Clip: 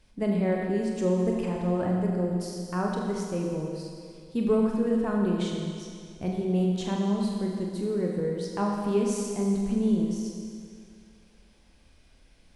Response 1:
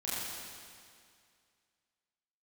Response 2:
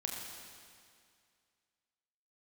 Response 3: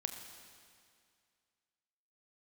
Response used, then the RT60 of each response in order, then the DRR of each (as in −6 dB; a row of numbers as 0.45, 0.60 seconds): 2; 2.2, 2.2, 2.2 seconds; −10.0, −1.0, 5.0 decibels